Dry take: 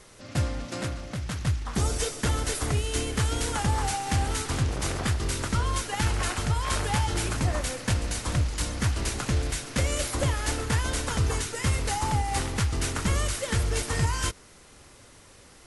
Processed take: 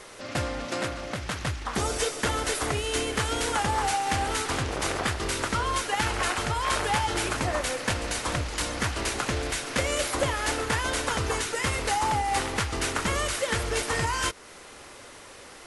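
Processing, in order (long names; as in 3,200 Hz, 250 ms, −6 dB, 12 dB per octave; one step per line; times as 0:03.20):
bass and treble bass −12 dB, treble −5 dB
in parallel at +2 dB: downward compressor, threshold −40 dBFS, peak gain reduction 14.5 dB
on the sum: level +2 dB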